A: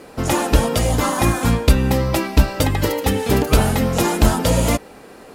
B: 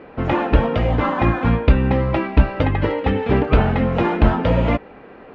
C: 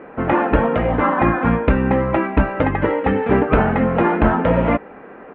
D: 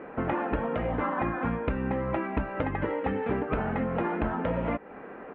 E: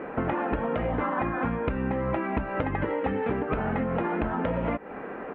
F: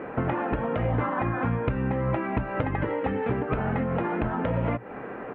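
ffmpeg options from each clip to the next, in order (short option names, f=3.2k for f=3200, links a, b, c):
-af "lowpass=f=2.7k:w=0.5412,lowpass=f=2.7k:w=1.3066"
-af "firequalizer=gain_entry='entry(120,0);entry(170,7);entry(1600,10);entry(4900,-14)':delay=0.05:min_phase=1,volume=-5dB"
-af "acompressor=threshold=-23dB:ratio=4,volume=-4dB"
-af "acompressor=threshold=-30dB:ratio=6,volume=6dB"
-af "equalizer=f=120:t=o:w=0.26:g=12.5"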